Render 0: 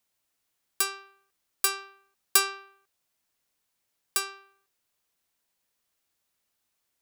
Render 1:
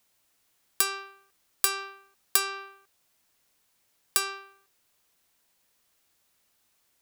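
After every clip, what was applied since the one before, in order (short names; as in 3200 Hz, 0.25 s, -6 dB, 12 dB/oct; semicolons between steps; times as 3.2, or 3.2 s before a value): compressor 6:1, threshold -29 dBFS, peak gain reduction 13 dB; gain +8 dB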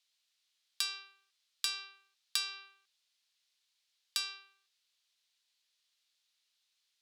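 band-pass 3900 Hz, Q 2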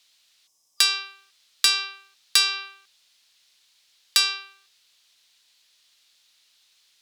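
spectral gain 0.47–0.79, 1200–4900 Hz -20 dB; in parallel at -8 dB: sine folder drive 10 dB, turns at -12.5 dBFS; on the sum: gain +7.5 dB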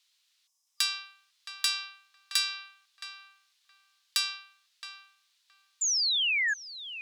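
HPF 830 Hz 24 dB/oct; painted sound fall, 5.81–6.54, 1600–7300 Hz -18 dBFS; darkening echo 0.669 s, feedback 17%, low-pass 1800 Hz, level -7.5 dB; gain -9 dB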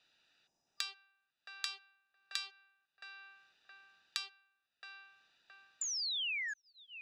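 Wiener smoothing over 41 samples; air absorption 92 m; three-band squash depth 100%; gain -6 dB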